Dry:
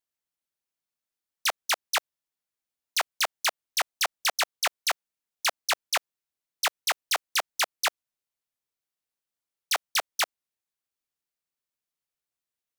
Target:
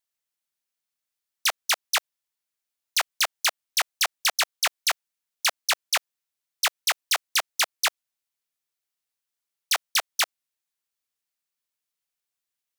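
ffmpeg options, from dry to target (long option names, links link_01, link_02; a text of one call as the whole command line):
ffmpeg -i in.wav -af "tiltshelf=frequency=970:gain=-4" out.wav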